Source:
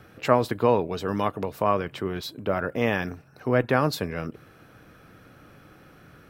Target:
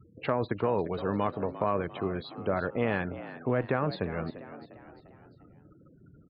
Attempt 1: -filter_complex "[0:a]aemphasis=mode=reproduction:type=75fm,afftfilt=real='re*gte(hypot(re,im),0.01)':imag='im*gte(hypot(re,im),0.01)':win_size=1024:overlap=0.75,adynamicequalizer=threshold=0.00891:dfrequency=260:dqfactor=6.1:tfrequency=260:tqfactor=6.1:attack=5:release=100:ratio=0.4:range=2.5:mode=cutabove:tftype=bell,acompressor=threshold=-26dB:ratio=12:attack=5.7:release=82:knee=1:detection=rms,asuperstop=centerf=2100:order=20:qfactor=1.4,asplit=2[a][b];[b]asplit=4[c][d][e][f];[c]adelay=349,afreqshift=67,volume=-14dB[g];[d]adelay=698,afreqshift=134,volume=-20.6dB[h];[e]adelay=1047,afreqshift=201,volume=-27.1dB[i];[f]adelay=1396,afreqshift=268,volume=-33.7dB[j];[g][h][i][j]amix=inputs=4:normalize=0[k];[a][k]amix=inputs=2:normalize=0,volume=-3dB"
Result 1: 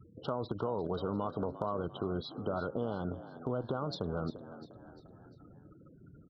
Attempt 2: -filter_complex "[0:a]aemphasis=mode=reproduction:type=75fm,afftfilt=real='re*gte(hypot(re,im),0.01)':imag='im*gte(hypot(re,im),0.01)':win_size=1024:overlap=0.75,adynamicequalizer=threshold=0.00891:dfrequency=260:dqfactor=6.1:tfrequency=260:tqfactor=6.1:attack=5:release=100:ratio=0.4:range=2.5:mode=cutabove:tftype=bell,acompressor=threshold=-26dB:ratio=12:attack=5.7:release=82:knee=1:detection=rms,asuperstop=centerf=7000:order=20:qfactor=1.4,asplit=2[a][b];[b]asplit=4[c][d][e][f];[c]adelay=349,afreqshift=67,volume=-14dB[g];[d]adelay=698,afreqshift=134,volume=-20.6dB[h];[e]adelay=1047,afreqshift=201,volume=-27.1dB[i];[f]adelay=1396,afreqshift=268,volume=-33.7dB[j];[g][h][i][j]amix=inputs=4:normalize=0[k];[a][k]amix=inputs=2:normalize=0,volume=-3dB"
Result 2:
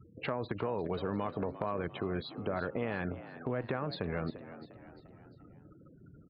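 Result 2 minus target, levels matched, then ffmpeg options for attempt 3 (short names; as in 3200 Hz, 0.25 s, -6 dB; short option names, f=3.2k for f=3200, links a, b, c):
compressor: peak gain reduction +7.5 dB
-filter_complex "[0:a]aemphasis=mode=reproduction:type=75fm,afftfilt=real='re*gte(hypot(re,im),0.01)':imag='im*gte(hypot(re,im),0.01)':win_size=1024:overlap=0.75,adynamicequalizer=threshold=0.00891:dfrequency=260:dqfactor=6.1:tfrequency=260:tqfactor=6.1:attack=5:release=100:ratio=0.4:range=2.5:mode=cutabove:tftype=bell,acompressor=threshold=-18dB:ratio=12:attack=5.7:release=82:knee=1:detection=rms,asuperstop=centerf=7000:order=20:qfactor=1.4,asplit=2[a][b];[b]asplit=4[c][d][e][f];[c]adelay=349,afreqshift=67,volume=-14dB[g];[d]adelay=698,afreqshift=134,volume=-20.6dB[h];[e]adelay=1047,afreqshift=201,volume=-27.1dB[i];[f]adelay=1396,afreqshift=268,volume=-33.7dB[j];[g][h][i][j]amix=inputs=4:normalize=0[k];[a][k]amix=inputs=2:normalize=0,volume=-3dB"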